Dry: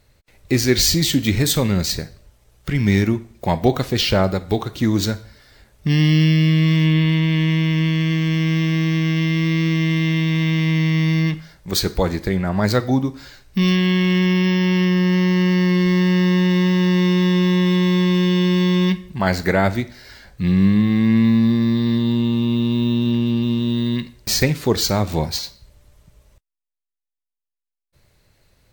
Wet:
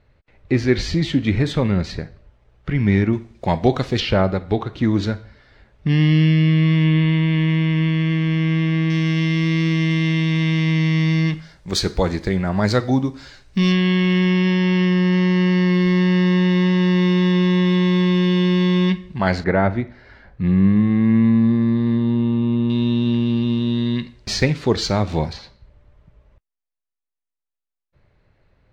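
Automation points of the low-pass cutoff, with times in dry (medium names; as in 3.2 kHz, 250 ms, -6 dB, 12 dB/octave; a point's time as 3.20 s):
2.4 kHz
from 3.13 s 5.3 kHz
from 4.00 s 2.9 kHz
from 8.90 s 7.4 kHz
from 13.72 s 4.3 kHz
from 19.44 s 1.8 kHz
from 22.70 s 4.6 kHz
from 25.33 s 2.1 kHz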